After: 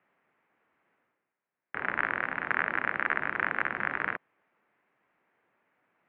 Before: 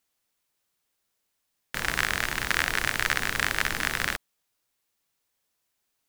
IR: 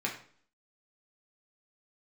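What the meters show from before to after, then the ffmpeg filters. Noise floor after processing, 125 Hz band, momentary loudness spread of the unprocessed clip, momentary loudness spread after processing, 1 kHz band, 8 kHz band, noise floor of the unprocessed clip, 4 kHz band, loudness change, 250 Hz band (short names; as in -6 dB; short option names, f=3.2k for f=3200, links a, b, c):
under -85 dBFS, -11.0 dB, 5 LU, 6 LU, 0.0 dB, under -40 dB, -78 dBFS, -21.0 dB, -3.5 dB, -3.0 dB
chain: -af "areverse,acompressor=mode=upward:threshold=-48dB:ratio=2.5,areverse,highpass=f=260:t=q:w=0.5412,highpass=f=260:t=q:w=1.307,lowpass=f=2.3k:t=q:w=0.5176,lowpass=f=2.3k:t=q:w=0.7071,lowpass=f=2.3k:t=q:w=1.932,afreqshift=-98,volume=-1.5dB"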